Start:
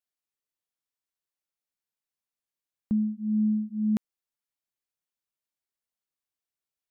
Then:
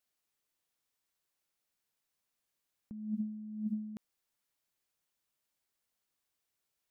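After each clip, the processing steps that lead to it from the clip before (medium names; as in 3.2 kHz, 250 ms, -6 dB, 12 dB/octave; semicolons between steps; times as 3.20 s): compressor with a negative ratio -37 dBFS, ratio -1; trim -3 dB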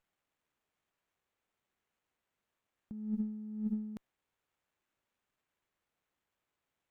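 sliding maximum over 9 samples; trim +1 dB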